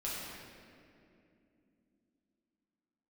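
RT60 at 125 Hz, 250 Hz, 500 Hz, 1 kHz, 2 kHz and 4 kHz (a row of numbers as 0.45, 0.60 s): 3.5, 4.5, 3.2, 2.2, 2.2, 1.6 s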